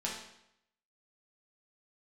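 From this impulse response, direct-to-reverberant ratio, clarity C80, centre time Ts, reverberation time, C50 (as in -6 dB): -4.5 dB, 6.5 dB, 43 ms, 0.75 s, 3.5 dB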